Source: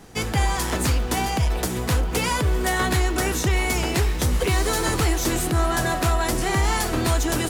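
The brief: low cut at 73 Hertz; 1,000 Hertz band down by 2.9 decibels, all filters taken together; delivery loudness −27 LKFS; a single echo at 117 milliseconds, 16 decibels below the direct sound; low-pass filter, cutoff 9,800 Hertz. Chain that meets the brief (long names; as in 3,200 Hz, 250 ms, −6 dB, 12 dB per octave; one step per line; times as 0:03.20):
high-pass filter 73 Hz
low-pass filter 9,800 Hz
parametric band 1,000 Hz −4 dB
single-tap delay 117 ms −16 dB
level −2.5 dB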